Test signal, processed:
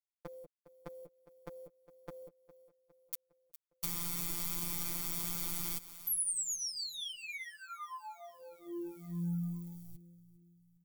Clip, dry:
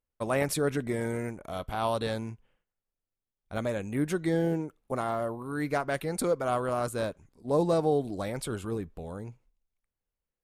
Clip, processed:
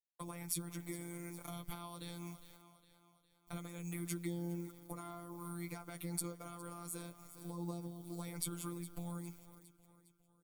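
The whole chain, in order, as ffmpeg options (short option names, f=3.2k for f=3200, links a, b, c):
-filter_complex "[0:a]acompressor=threshold=-38dB:ratio=8,acrusher=bits=11:mix=0:aa=0.000001,aecho=1:1:408|816|1224|1632:0.112|0.055|0.0269|0.0132,acrossover=split=360[a][b];[b]acompressor=threshold=-47dB:ratio=6[c];[a][c]amix=inputs=2:normalize=0,aemphasis=mode=production:type=75kf,afftfilt=real='hypot(re,im)*cos(PI*b)':imag='0':win_size=1024:overlap=0.75,aecho=1:1:6.7:0.63,volume=1.5dB"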